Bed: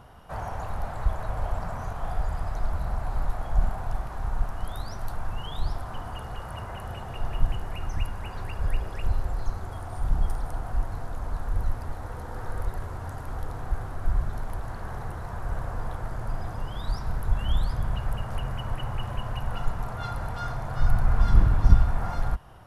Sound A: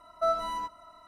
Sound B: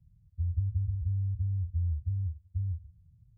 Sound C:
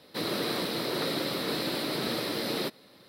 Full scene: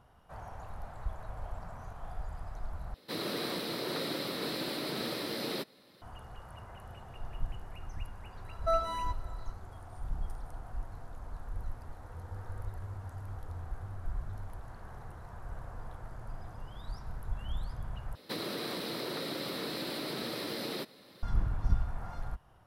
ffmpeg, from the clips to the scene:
-filter_complex "[3:a]asplit=2[a][b];[0:a]volume=-12dB[c];[2:a]highpass=120[d];[b]acompressor=threshold=-39dB:ratio=4:attack=45:release=78:knee=1:detection=peak[e];[c]asplit=3[f][g][h];[f]atrim=end=2.944[i];[a]atrim=end=3.08,asetpts=PTS-STARTPTS,volume=-5dB[j];[g]atrim=start=6.016:end=18.154[k];[e]atrim=end=3.08,asetpts=PTS-STARTPTS,volume=-1dB[l];[h]atrim=start=21.226[m];[1:a]atrim=end=1.07,asetpts=PTS-STARTPTS,volume=-2.5dB,afade=t=in:d=0.004:c=hsin,afade=t=out:st=1.066:d=0.004:c=hsin,adelay=8450[n];[d]atrim=end=3.37,asetpts=PTS-STARTPTS,volume=-7.5dB,afade=t=in:d=0.004:c=hsin,afade=t=out:st=3.366:d=0.004:c=hsin,adelay=11740[o];[i][j]acrossfade=d=0.004:c1=hsin:c2=hsin[p];[p][k]acrossfade=d=0.004:c1=hsin:c2=hsin[q];[q][l]acrossfade=d=0.004:c1=hsin:c2=hsin[r];[r][m]acrossfade=d=0.004:c1=hsin:c2=hsin[s];[s][n][o]amix=inputs=3:normalize=0"

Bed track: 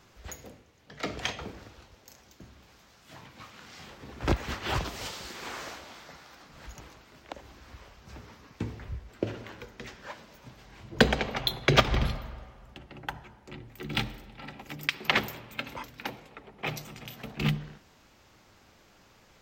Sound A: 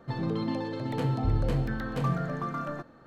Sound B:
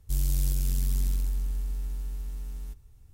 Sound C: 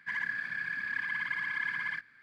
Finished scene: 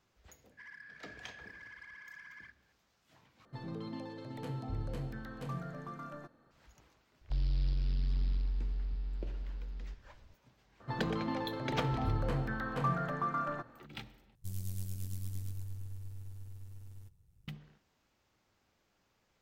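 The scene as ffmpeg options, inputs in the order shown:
-filter_complex "[1:a]asplit=2[a][b];[2:a]asplit=2[c][d];[0:a]volume=-16.5dB[e];[3:a]asoftclip=type=tanh:threshold=-27dB[f];[a]highshelf=f=5.4k:g=5.5[g];[c]aresample=11025,aresample=44100[h];[b]equalizer=f=1.2k:w=0.79:g=8[i];[d]aeval=exprs='val(0)*sin(2*PI*50*n/s)':c=same[j];[e]asplit=3[k][l][m];[k]atrim=end=3.454[n];[g]atrim=end=3.06,asetpts=PTS-STARTPTS,volume=-12dB[o];[l]atrim=start=6.506:end=14.354[p];[j]atrim=end=3.13,asetpts=PTS-STARTPTS,volume=-10dB[q];[m]atrim=start=17.476[r];[f]atrim=end=2.22,asetpts=PTS-STARTPTS,volume=-16.5dB,afade=t=in:d=0.004:c=hsin,afade=t=out:st=2.216:d=0.004:c=hsin,adelay=510[s];[h]atrim=end=3.13,asetpts=PTS-STARTPTS,volume=-5.5dB,afade=t=in:d=0.004:c=hsin,afade=t=out:st=3.126:d=0.004:c=hsin,adelay=7210[t];[i]atrim=end=3.06,asetpts=PTS-STARTPTS,volume=-7dB,afade=t=in:d=0.004:c=hsin,afade=t=out:st=3.056:d=0.004:c=hsin,adelay=10800[u];[n][o]acrossfade=d=0.004:c1=hsin:c2=hsin[v];[v][p]acrossfade=d=0.004:c1=hsin:c2=hsin[w];[w][q]acrossfade=d=0.004:c1=hsin:c2=hsin[x];[x][r]acrossfade=d=0.004:c1=hsin:c2=hsin[y];[y][s][t][u]amix=inputs=4:normalize=0"

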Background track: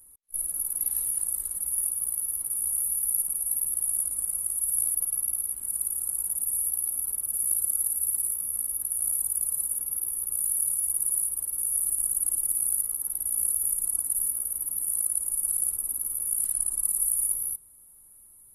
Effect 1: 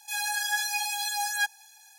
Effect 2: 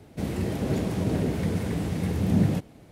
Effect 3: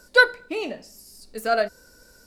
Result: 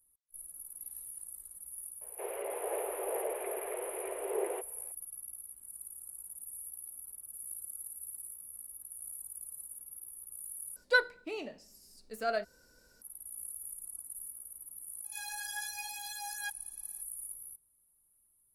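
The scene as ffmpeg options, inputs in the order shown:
-filter_complex "[0:a]volume=-17.5dB[a];[2:a]highpass=f=230:t=q:w=0.5412,highpass=f=230:t=q:w=1.307,lowpass=f=2.6k:t=q:w=0.5176,lowpass=f=2.6k:t=q:w=0.7071,lowpass=f=2.6k:t=q:w=1.932,afreqshift=200[b];[a]asplit=2[c][d];[c]atrim=end=10.764[e];[3:a]atrim=end=2.26,asetpts=PTS-STARTPTS,volume=-11dB[f];[d]atrim=start=13.016[g];[b]atrim=end=2.91,asetpts=PTS-STARTPTS,volume=-6.5dB,afade=t=in:d=0.004:c=hsin,afade=t=out:st=2.906:d=0.004:c=hsin,adelay=2010[h];[1:a]atrim=end=1.98,asetpts=PTS-STARTPTS,volume=-13dB,afade=t=in:d=0.004:c=hsin,afade=t=out:st=1.976:d=0.004:c=hsin,adelay=15040[i];[e][f]acrossfade=d=0.004:c1=hsin:c2=hsin[j];[j][g]acrossfade=d=0.004:c1=hsin:c2=hsin[k];[k][h][i]amix=inputs=3:normalize=0"

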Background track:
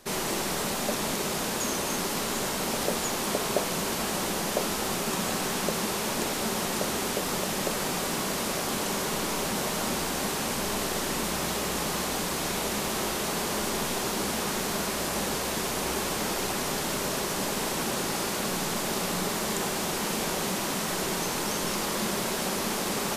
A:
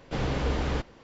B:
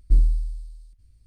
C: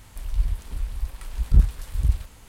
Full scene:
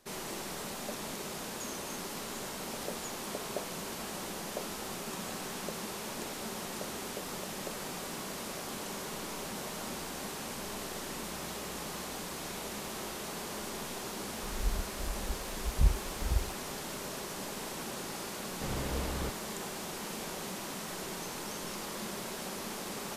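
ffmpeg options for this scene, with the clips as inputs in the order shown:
-filter_complex "[0:a]volume=-10.5dB[a];[3:a]atrim=end=2.48,asetpts=PTS-STARTPTS,volume=-10dB,afade=t=in:d=0.004:c=hsin,afade=t=out:st=2.476:d=0.004:c=hsin,adelay=14270[b];[1:a]atrim=end=1.03,asetpts=PTS-STARTPTS,volume=-8.5dB,afade=t=in:d=0.004:c=hsin,afade=t=out:st=1.026:d=0.004:c=hsin,adelay=18490[c];[a][b][c]amix=inputs=3:normalize=0"

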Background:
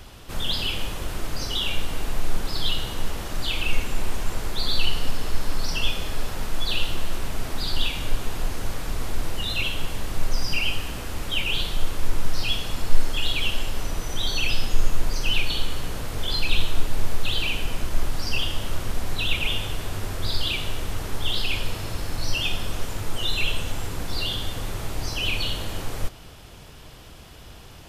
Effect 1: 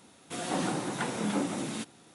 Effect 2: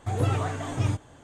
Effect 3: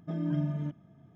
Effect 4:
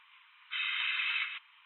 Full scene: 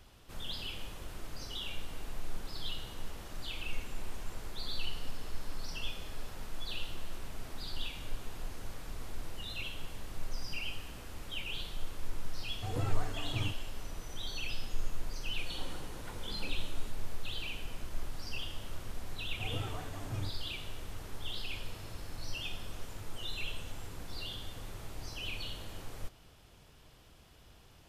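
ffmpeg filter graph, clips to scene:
-filter_complex "[2:a]asplit=2[a][b];[0:a]volume=-14.5dB[c];[1:a]aecho=1:1:2.1:0.35[d];[a]atrim=end=1.23,asetpts=PTS-STARTPTS,volume=-10.5dB,afade=t=in:d=0.004:c=hsin,afade=t=out:st=1.226:d=0.004:c=hsin,adelay=12560[e];[d]atrim=end=2.14,asetpts=PTS-STARTPTS,volume=-17.5dB,afade=t=in:d=0.004:c=hsin,afade=t=out:st=2.136:d=0.004:c=hsin,adelay=15070[f];[b]atrim=end=1.23,asetpts=PTS-STARTPTS,volume=-14dB,afade=t=in:d=0.004:c=hsin,afade=t=out:st=1.226:d=0.004:c=hsin,adelay=19330[g];[c][e][f][g]amix=inputs=4:normalize=0"

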